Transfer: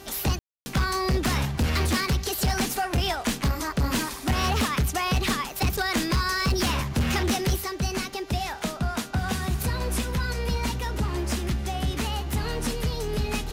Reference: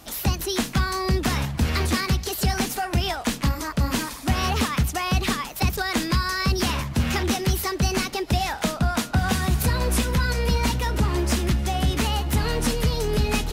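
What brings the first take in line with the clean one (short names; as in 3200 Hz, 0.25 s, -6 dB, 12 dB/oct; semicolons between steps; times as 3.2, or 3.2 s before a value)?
clip repair -19 dBFS; de-hum 391.3 Hz, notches 18; room tone fill 0.39–0.66; gain 0 dB, from 7.56 s +5 dB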